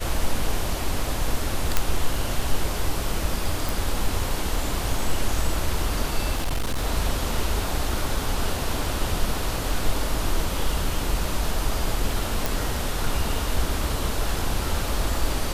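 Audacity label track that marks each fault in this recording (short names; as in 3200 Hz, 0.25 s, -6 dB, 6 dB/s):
1.770000	1.770000	pop -4 dBFS
3.690000	3.690000	pop
6.370000	6.850000	clipped -20.5 dBFS
12.460000	12.460000	pop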